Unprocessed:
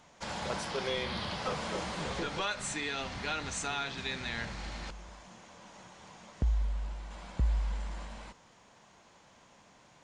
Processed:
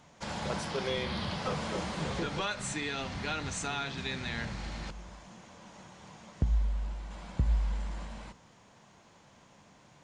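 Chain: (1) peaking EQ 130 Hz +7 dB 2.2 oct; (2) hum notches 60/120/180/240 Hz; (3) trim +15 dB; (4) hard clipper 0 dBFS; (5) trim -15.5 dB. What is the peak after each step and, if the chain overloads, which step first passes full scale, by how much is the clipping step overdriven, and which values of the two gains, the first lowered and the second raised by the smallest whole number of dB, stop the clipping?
-15.5 dBFS, -17.0 dBFS, -2.0 dBFS, -2.0 dBFS, -17.5 dBFS; nothing clips

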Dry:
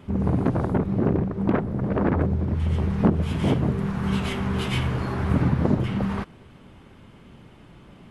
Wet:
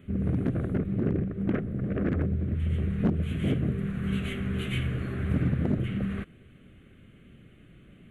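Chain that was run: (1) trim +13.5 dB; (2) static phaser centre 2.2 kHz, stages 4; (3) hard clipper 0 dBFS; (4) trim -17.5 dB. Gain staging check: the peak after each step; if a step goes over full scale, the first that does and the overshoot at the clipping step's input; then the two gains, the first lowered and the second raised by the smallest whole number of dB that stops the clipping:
+6.5 dBFS, +6.0 dBFS, 0.0 dBFS, -17.5 dBFS; step 1, 6.0 dB; step 1 +7.5 dB, step 4 -11.5 dB

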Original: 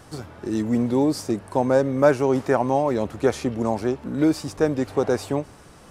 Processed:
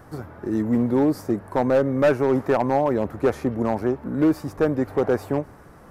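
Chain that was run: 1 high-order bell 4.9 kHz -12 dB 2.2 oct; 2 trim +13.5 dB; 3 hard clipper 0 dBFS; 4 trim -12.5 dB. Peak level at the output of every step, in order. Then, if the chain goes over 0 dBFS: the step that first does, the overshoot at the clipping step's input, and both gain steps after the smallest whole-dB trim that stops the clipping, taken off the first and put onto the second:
-3.5 dBFS, +10.0 dBFS, 0.0 dBFS, -12.5 dBFS; step 2, 10.0 dB; step 2 +3.5 dB, step 4 -2.5 dB

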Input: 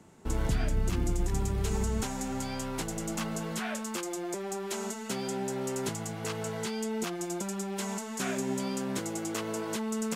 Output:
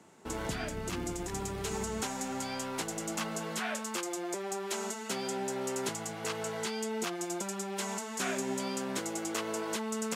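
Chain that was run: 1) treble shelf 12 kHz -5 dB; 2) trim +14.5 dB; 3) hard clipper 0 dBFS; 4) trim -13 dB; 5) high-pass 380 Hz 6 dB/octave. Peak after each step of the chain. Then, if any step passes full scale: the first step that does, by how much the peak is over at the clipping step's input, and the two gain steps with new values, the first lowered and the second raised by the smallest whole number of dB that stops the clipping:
-19.0 dBFS, -4.5 dBFS, -4.5 dBFS, -17.5 dBFS, -20.0 dBFS; nothing clips

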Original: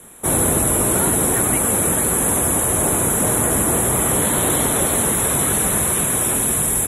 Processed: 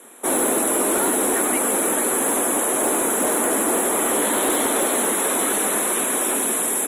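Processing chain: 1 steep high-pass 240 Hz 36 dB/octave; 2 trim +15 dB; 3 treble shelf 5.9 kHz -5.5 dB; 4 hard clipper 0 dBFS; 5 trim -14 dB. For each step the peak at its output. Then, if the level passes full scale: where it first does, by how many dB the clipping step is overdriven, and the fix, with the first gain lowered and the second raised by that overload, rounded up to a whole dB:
-5.5 dBFS, +9.5 dBFS, +8.0 dBFS, 0.0 dBFS, -14.0 dBFS; step 2, 8.0 dB; step 2 +7 dB, step 5 -6 dB

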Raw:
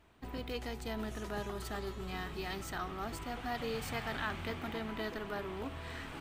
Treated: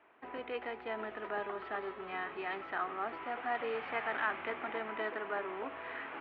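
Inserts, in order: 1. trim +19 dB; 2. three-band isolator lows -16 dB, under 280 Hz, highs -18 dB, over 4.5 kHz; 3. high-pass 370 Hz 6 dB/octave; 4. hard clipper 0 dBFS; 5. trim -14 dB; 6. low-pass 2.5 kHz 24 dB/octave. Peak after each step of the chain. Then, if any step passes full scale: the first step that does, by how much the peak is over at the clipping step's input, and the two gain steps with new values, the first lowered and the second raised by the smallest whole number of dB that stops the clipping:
-3.5 dBFS, -5.0 dBFS, -6.0 dBFS, -6.0 dBFS, -20.0 dBFS, -20.0 dBFS; nothing clips

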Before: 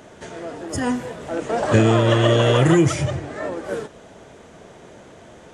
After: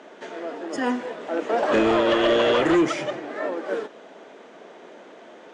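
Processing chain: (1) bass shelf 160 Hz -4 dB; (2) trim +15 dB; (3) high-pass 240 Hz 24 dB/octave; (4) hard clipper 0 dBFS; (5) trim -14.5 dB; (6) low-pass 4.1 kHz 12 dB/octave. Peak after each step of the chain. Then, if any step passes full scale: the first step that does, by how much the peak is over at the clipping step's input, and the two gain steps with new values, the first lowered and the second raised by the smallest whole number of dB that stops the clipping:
-4.0 dBFS, +10.5 dBFS, +8.5 dBFS, 0.0 dBFS, -14.5 dBFS, -14.0 dBFS; step 2, 8.5 dB; step 2 +6 dB, step 5 -5.5 dB

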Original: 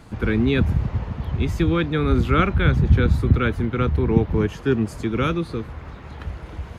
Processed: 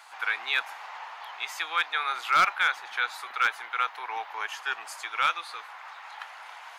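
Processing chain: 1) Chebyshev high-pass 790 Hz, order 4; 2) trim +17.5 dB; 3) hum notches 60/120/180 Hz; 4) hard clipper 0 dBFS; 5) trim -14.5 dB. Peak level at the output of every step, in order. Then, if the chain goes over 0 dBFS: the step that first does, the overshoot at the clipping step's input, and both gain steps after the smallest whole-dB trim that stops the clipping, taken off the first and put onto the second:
-10.0 dBFS, +7.5 dBFS, +7.5 dBFS, 0.0 dBFS, -14.5 dBFS; step 2, 7.5 dB; step 2 +9.5 dB, step 5 -6.5 dB

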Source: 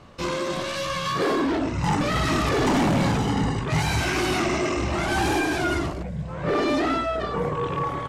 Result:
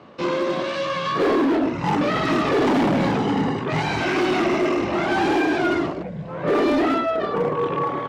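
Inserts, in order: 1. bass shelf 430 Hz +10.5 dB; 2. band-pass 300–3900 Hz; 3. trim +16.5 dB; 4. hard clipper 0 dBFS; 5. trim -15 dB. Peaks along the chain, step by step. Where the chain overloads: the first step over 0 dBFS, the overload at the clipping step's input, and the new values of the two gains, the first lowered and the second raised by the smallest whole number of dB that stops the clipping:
-7.0 dBFS, -9.5 dBFS, +7.0 dBFS, 0.0 dBFS, -15.0 dBFS; step 3, 7.0 dB; step 3 +9.5 dB, step 5 -8 dB

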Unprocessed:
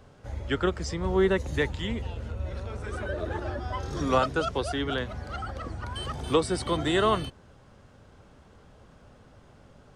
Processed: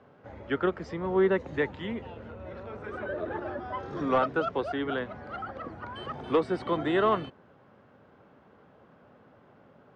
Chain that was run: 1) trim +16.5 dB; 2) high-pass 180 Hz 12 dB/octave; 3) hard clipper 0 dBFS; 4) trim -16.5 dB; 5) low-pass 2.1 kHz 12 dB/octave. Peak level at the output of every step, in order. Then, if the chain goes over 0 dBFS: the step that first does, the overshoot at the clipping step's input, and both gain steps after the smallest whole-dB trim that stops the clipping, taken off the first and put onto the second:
+5.5 dBFS, +5.5 dBFS, 0.0 dBFS, -16.5 dBFS, -16.0 dBFS; step 1, 5.5 dB; step 1 +10.5 dB, step 4 -10.5 dB

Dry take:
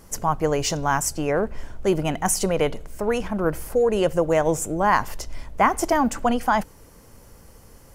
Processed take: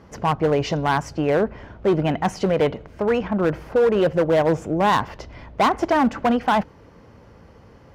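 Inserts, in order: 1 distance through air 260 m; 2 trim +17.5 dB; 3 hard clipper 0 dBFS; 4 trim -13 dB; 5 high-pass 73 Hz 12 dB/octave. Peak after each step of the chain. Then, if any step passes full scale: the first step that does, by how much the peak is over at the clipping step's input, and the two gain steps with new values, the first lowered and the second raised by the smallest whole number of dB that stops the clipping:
-7.5 dBFS, +10.0 dBFS, 0.0 dBFS, -13.0 dBFS, -9.5 dBFS; step 2, 10.0 dB; step 2 +7.5 dB, step 4 -3 dB

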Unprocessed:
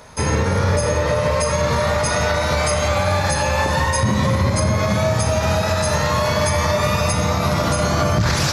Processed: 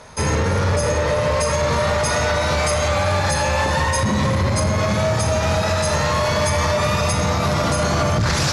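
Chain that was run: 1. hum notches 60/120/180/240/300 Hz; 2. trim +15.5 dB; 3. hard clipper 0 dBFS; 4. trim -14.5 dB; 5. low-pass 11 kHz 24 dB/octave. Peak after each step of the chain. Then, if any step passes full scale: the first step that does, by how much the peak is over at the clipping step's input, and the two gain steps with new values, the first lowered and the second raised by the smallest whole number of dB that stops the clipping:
-7.5 dBFS, +8.0 dBFS, 0.0 dBFS, -14.5 dBFS, -12.0 dBFS; step 2, 8.0 dB; step 2 +7.5 dB, step 4 -6.5 dB

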